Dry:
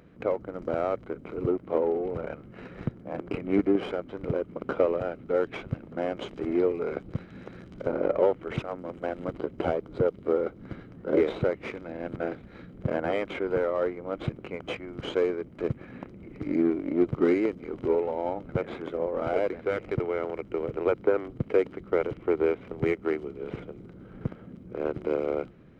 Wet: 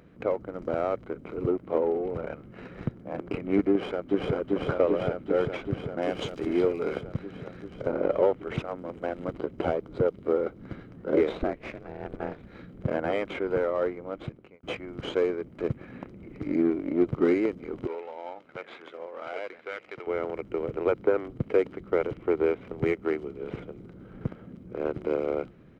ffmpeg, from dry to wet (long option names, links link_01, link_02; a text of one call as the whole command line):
ffmpeg -i in.wav -filter_complex "[0:a]asplit=2[link_01][link_02];[link_02]afade=type=in:start_time=3.72:duration=0.01,afade=type=out:start_time=4.32:duration=0.01,aecho=0:1:390|780|1170|1560|1950|2340|2730|3120|3510|3900|4290|4680:0.944061|0.755249|0.604199|0.483359|0.386687|0.30935|0.24748|0.197984|0.158387|0.12671|0.101368|0.0810942[link_03];[link_01][link_03]amix=inputs=2:normalize=0,asettb=1/sr,asplit=3[link_04][link_05][link_06];[link_04]atrim=end=6.024[link_07];[link_05]atrim=start=6.02:end=7.01,asetpts=PTS-STARTPTS,afade=type=in:duration=0.004:curve=qsin,afade=type=out:start_time=0.986:duration=0.004:curve=qsin,highshelf=frequency=3200:gain=10.5[link_08];[link_06]atrim=start=7.006[link_09];[link_07][link_08]acrossfade=duration=0.004:curve1=hsin:curve2=qsin[link_10];[link_10][link_09]acrossfade=duration=0.004:curve1=qsin:curve2=hsin,asettb=1/sr,asplit=3[link_11][link_12][link_13];[link_11]atrim=end=11.374[link_14];[link_12]atrim=start=11.37:end=12.39,asetpts=PTS-STARTPTS,afade=type=in:duration=0.004:curve=qsin,afade=type=out:start_time=1.016:duration=0.004:curve=qsin,aeval=exprs='val(0)*sin(2*PI*150*n/s)':channel_layout=same[link_15];[link_13]atrim=start=12.386[link_16];[link_14][link_15]acrossfade=duration=0.004:curve1=hsin:curve2=qsin[link_17];[link_17][link_16]acrossfade=duration=0.004:curve1=qsin:curve2=hsin,asettb=1/sr,asplit=3[link_18][link_19][link_20];[link_18]atrim=end=17.874[link_21];[link_19]atrim=start=17.87:end=20.07,asetpts=PTS-STARTPTS,afade=type=in:duration=0.004:curve=qsin,afade=type=out:start_time=2.196:duration=0.004:curve=qsin,bandpass=frequency=3200:width_type=q:width=0.52[link_22];[link_20]atrim=start=20.066[link_23];[link_21][link_22]acrossfade=duration=0.004:curve1=hsin:curve2=qsin[link_24];[link_24][link_23]acrossfade=duration=0.004:curve1=qsin:curve2=hsin,asplit=2[link_25][link_26];[link_25]atrim=end=14.63,asetpts=PTS-STARTPTS,afade=type=out:start_time=13.91:duration=0.72[link_27];[link_26]atrim=start=14.63,asetpts=PTS-STARTPTS,afade=type=in:duration=0.004:curve=hsin[link_28];[link_27][link_28]concat=n=2:v=0:a=1" out.wav